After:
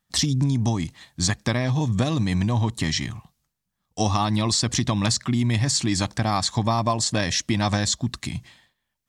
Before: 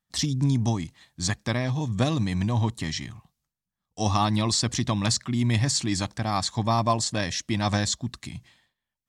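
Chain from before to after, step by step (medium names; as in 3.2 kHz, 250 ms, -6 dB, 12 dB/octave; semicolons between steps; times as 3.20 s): compression, threshold -26 dBFS, peak gain reduction 8.5 dB; trim +7.5 dB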